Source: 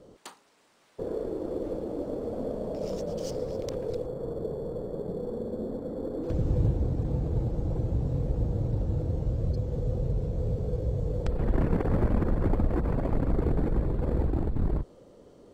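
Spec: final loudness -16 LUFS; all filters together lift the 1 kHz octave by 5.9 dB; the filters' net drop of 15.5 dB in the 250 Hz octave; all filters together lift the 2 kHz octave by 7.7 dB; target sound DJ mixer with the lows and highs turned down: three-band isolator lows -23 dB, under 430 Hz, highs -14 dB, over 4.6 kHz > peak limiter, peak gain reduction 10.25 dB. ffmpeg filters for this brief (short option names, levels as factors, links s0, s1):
-filter_complex "[0:a]acrossover=split=430 4600:gain=0.0708 1 0.2[s0][s1][s2];[s0][s1][s2]amix=inputs=3:normalize=0,equalizer=f=250:t=o:g=-3.5,equalizer=f=1000:t=o:g=7,equalizer=f=2000:t=o:g=7.5,volume=15,alimiter=limit=0.631:level=0:latency=1"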